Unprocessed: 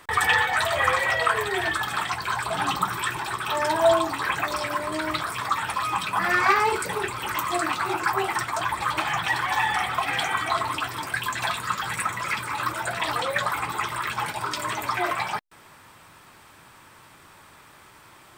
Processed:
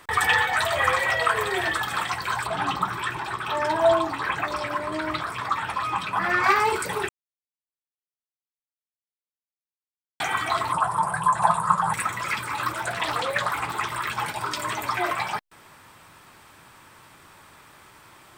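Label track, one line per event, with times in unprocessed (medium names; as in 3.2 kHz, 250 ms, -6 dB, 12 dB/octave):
0.830000	1.250000	echo throw 540 ms, feedback 40%, level -12 dB
2.470000	6.440000	low-pass 3.2 kHz 6 dB/octave
7.090000	10.200000	mute
10.720000	11.940000	FFT filter 120 Hz 0 dB, 170 Hz +15 dB, 250 Hz -11 dB, 590 Hz +6 dB, 980 Hz +13 dB, 2.2 kHz -13 dB, 5.9 kHz -11 dB, 10 kHz +7 dB, 15 kHz -27 dB
12.720000	13.900000	loudspeaker Doppler distortion depth 0.19 ms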